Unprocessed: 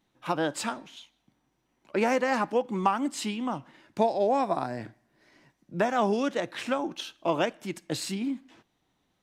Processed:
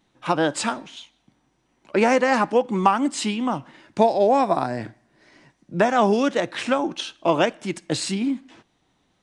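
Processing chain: downsampling 22050 Hz; gain +7 dB

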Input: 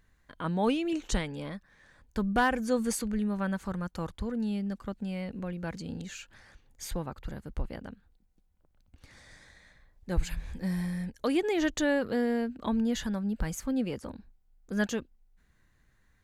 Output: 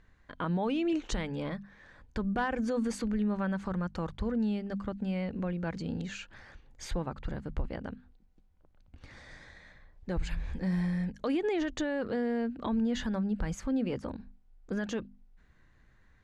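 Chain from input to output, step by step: LPF 7300 Hz 12 dB/oct; high shelf 4600 Hz -10 dB; notches 50/100/150/200/250 Hz; in parallel at -2.5 dB: compressor, threshold -38 dBFS, peak gain reduction 15.5 dB; on the sum: limiter -23 dBFS, peak gain reduction 9.5 dB

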